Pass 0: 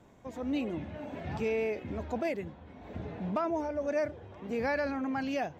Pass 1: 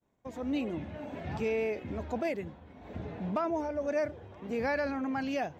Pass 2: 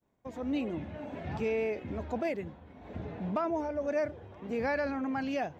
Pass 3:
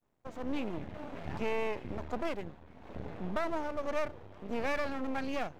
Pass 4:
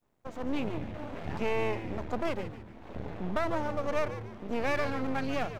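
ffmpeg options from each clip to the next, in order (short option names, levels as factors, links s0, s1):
-af "agate=range=0.0224:threshold=0.00447:ratio=3:detection=peak"
-af "highshelf=f=5100:g=-5"
-af "aeval=exprs='max(val(0),0)':c=same,volume=1.19"
-filter_complex "[0:a]asplit=5[s0][s1][s2][s3][s4];[s1]adelay=145,afreqshift=-110,volume=0.282[s5];[s2]adelay=290,afreqshift=-220,volume=0.105[s6];[s3]adelay=435,afreqshift=-330,volume=0.0385[s7];[s4]adelay=580,afreqshift=-440,volume=0.0143[s8];[s0][s5][s6][s7][s8]amix=inputs=5:normalize=0,volume=1.41"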